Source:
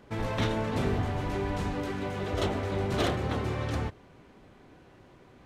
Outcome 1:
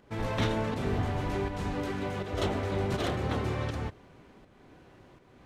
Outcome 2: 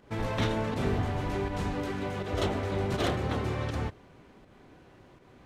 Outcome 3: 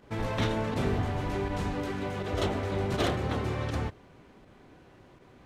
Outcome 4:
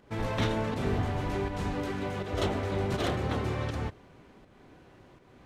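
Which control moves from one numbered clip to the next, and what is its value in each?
volume shaper, release: 402 ms, 145 ms, 62 ms, 266 ms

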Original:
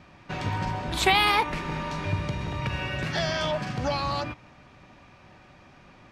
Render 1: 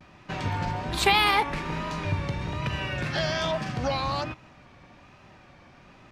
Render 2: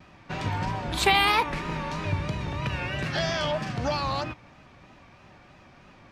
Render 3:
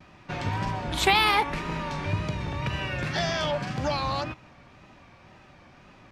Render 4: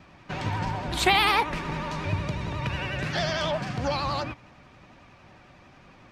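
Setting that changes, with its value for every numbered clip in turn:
vibrato, rate: 1.2 Hz, 3.1 Hz, 1.9 Hz, 11 Hz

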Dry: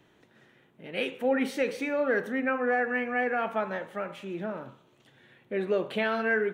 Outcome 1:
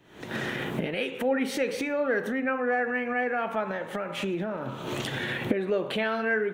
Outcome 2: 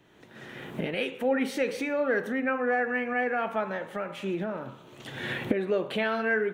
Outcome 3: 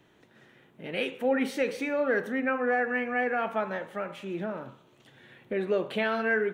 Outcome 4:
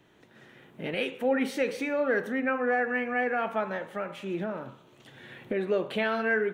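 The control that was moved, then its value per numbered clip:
recorder AGC, rising by: 90 dB/s, 33 dB/s, 5.1 dB/s, 13 dB/s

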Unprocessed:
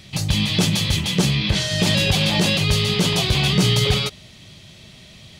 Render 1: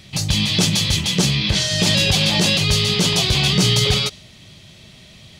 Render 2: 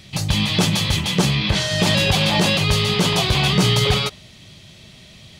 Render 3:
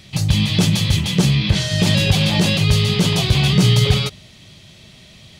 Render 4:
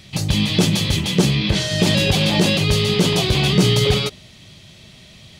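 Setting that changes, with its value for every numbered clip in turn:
dynamic bell, frequency: 5.8 kHz, 1 kHz, 110 Hz, 340 Hz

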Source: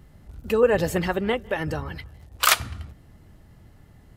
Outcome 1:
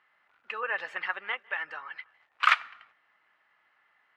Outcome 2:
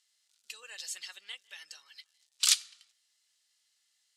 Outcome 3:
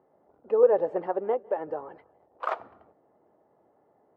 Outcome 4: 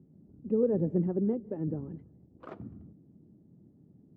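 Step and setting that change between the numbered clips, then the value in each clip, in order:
Butterworth band-pass, frequency: 1.7 kHz, 5.9 kHz, 610 Hz, 240 Hz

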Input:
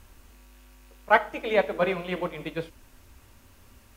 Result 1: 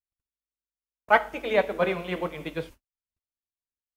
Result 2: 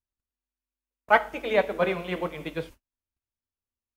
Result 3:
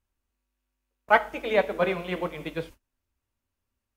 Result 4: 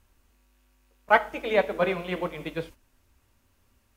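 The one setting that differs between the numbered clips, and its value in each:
gate, range: -55 dB, -43 dB, -29 dB, -12 dB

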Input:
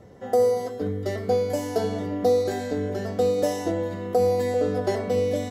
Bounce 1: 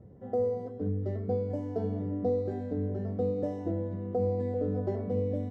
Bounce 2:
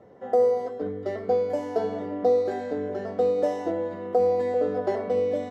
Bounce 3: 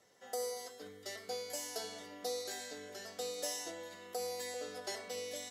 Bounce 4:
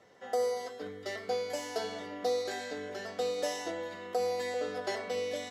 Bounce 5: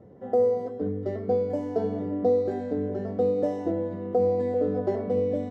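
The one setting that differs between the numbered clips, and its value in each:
band-pass filter, frequency: 100 Hz, 680 Hz, 8 kHz, 3 kHz, 260 Hz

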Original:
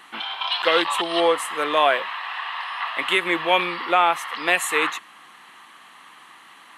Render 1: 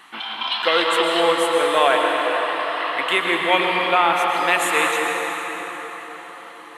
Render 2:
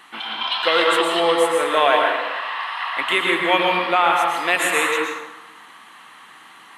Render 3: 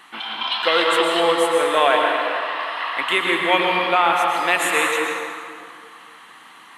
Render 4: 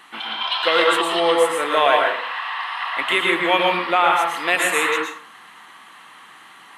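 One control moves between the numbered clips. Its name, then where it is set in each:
plate-style reverb, RT60: 5.2 s, 1.1 s, 2.3 s, 0.52 s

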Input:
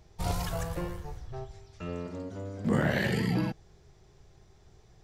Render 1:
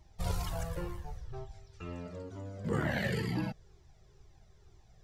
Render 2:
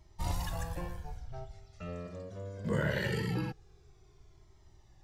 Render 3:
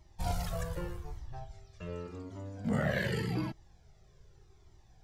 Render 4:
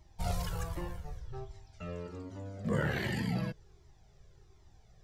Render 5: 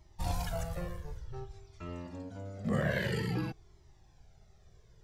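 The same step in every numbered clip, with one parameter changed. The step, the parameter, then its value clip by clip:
Shepard-style flanger, rate: 2.1 Hz, 0.22 Hz, 0.85 Hz, 1.3 Hz, 0.53 Hz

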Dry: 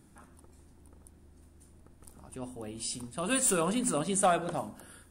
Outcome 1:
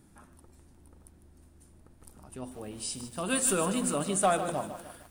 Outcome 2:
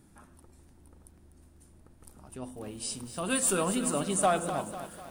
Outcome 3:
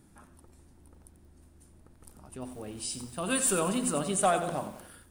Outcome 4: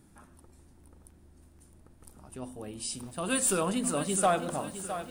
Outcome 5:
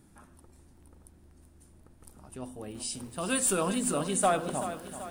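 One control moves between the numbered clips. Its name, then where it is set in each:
bit-crushed delay, time: 152 ms, 248 ms, 90 ms, 661 ms, 383 ms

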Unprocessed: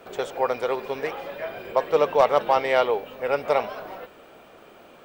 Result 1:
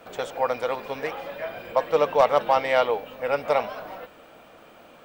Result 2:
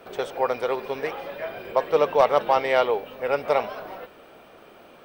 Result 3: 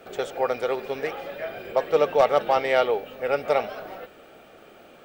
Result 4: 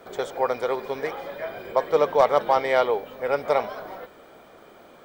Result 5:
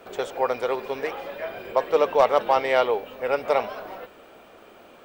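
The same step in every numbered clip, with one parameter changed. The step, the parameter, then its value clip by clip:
band-stop, frequency: 390 Hz, 7.1 kHz, 1 kHz, 2.7 kHz, 150 Hz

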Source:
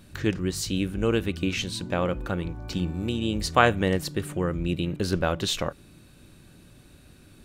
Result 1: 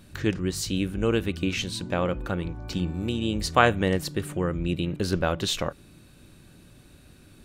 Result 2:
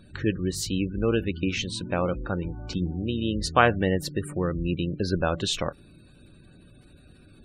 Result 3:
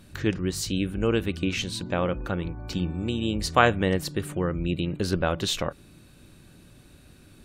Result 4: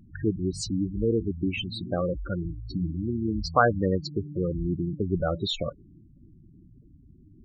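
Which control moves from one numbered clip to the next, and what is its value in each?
spectral gate, under each frame's peak: -60 dB, -25 dB, -45 dB, -10 dB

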